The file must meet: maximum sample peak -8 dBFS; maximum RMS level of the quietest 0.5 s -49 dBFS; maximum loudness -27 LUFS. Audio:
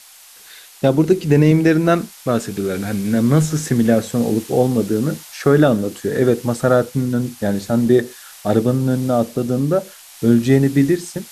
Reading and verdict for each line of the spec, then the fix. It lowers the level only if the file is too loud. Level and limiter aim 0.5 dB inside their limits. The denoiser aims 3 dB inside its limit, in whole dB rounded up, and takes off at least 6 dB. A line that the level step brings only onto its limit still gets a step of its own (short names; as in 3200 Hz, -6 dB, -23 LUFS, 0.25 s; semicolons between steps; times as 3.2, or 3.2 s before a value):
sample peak -2.0 dBFS: fail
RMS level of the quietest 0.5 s -44 dBFS: fail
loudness -17.5 LUFS: fail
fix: gain -10 dB